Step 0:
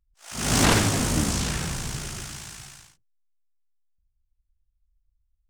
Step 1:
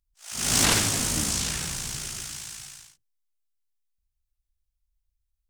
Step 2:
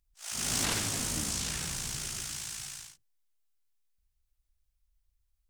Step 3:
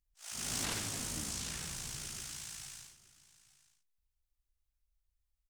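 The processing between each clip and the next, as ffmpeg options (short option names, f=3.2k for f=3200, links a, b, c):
-af "highshelf=f=2.1k:g=11,volume=-7dB"
-af "acompressor=threshold=-40dB:ratio=2,volume=2.5dB"
-af "aecho=1:1:871:0.106,volume=-6.5dB"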